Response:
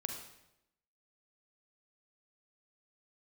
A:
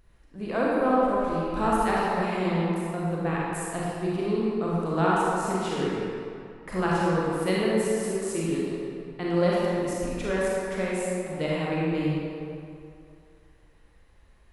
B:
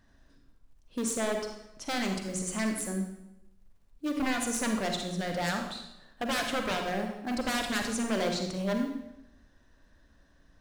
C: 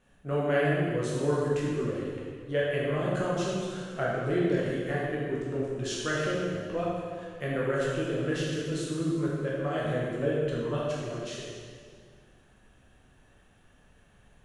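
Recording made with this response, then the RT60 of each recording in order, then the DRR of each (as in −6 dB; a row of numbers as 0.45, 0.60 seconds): B; 2.5, 0.85, 1.9 seconds; −6.5, 3.5, −6.0 decibels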